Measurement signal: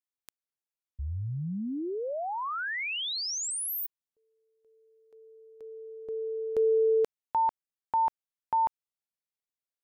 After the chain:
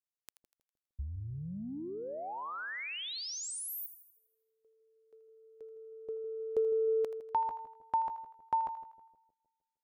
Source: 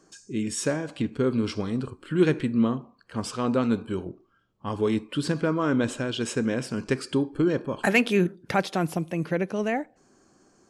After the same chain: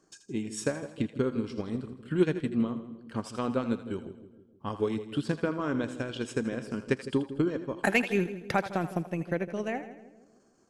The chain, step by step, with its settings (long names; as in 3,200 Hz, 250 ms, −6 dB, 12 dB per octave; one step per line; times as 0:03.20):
transient designer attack +6 dB, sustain −7 dB
echo with a time of its own for lows and highs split 570 Hz, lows 155 ms, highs 81 ms, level −12 dB
level −7.5 dB